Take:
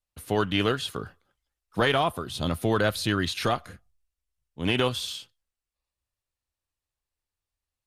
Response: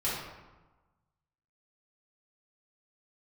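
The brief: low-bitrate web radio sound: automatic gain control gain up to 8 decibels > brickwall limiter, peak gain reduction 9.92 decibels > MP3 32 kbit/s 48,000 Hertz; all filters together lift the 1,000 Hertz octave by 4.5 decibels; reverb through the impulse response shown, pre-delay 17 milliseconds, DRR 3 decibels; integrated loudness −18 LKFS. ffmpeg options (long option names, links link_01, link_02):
-filter_complex "[0:a]equalizer=frequency=1000:width_type=o:gain=6,asplit=2[link_01][link_02];[1:a]atrim=start_sample=2205,adelay=17[link_03];[link_02][link_03]afir=irnorm=-1:irlink=0,volume=-11dB[link_04];[link_01][link_04]amix=inputs=2:normalize=0,dynaudnorm=maxgain=8dB,alimiter=limit=-17dB:level=0:latency=1,volume=10.5dB" -ar 48000 -c:a libmp3lame -b:a 32k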